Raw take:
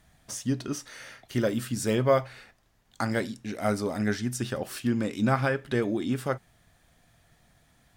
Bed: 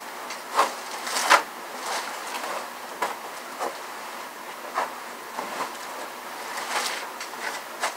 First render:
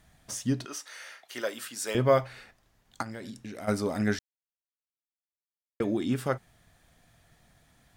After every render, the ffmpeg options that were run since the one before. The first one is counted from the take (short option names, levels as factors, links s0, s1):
-filter_complex "[0:a]asettb=1/sr,asplit=3[s0][s1][s2];[s0]atrim=end=0.654[s3];[s1]atrim=start=0.65:end=1.95,asetpts=PTS-STARTPTS,afade=t=in:d=0.004:c=qsin,afade=t=out:st=1.296:d=0.004:c=qsin,highpass=640[s4];[s2]atrim=start=1.946[s5];[s3][s4]acrossfade=d=0.004:c1=hsin:c2=qsin[s6];[s6][s5]acrossfade=d=0.004:c1=qsin:c2=hsin,asplit=3[s7][s8][s9];[s7]afade=t=out:st=3.01:d=0.02[s10];[s8]acompressor=threshold=0.0158:ratio=8:attack=3.2:release=140:knee=1:detection=peak,afade=t=in:st=3.01:d=0.02,afade=t=out:st=3.67:d=0.02[s11];[s9]afade=t=in:st=3.67:d=0.02[s12];[s10][s11][s12]amix=inputs=3:normalize=0,asplit=3[s13][s14][s15];[s13]atrim=end=4.19,asetpts=PTS-STARTPTS,afade=t=out:st=4.186:d=0.004:c=hsin[s16];[s14]atrim=start=4.19:end=5.8,asetpts=PTS-STARTPTS,volume=0[s17];[s15]atrim=start=5.8,asetpts=PTS-STARTPTS,afade=t=in:d=0.004:c=hsin[s18];[s16][s17][s18]concat=n=3:v=0:a=1"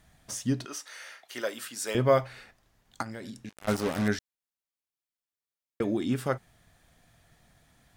-filter_complex "[0:a]asettb=1/sr,asplit=3[s0][s1][s2];[s0]atrim=end=3.494[s3];[s1]atrim=start=3.49:end=4.08,asetpts=PTS-STARTPTS,afade=t=in:d=0.004:c=qsin,afade=t=out:st=0.586:d=0.004:c=qsin,acrusher=bits=4:mix=0:aa=0.5[s4];[s2]atrim=start=4.076[s5];[s3][s4]acrossfade=d=0.004:c1=hsin:c2=qsin[s6];[s6][s5]acrossfade=d=0.004:c1=qsin:c2=hsin"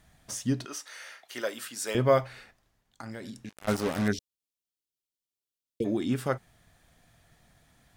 -filter_complex "[0:a]asplit=3[s0][s1][s2];[s0]afade=t=out:st=4.11:d=0.02[s3];[s1]asuperstop=centerf=1200:order=8:qfactor=0.56,afade=t=in:st=4.11:d=0.02,afade=t=out:st=5.84:d=0.02[s4];[s2]afade=t=in:st=5.84:d=0.02[s5];[s3][s4][s5]amix=inputs=3:normalize=0,asplit=2[s6][s7];[s6]atrim=end=3.03,asetpts=PTS-STARTPTS,afade=t=out:st=2.36:d=0.67:silence=0.251189[s8];[s7]atrim=start=3.03,asetpts=PTS-STARTPTS,afade=t=in:d=0.004:c=hsin:silence=0.251189[s9];[s8][s9]concat=n=2:v=0:a=1"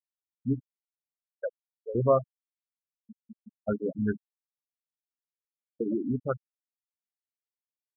-af "bandreject=f=50:t=h:w=6,bandreject=f=100:t=h:w=6,bandreject=f=150:t=h:w=6,bandreject=f=200:t=h:w=6,bandreject=f=250:t=h:w=6,afftfilt=real='re*gte(hypot(re,im),0.126)':imag='im*gte(hypot(re,im),0.126)':win_size=1024:overlap=0.75"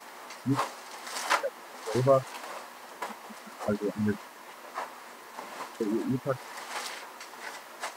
-filter_complex "[1:a]volume=0.335[s0];[0:a][s0]amix=inputs=2:normalize=0"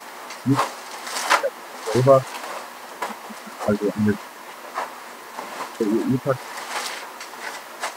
-af "volume=2.66"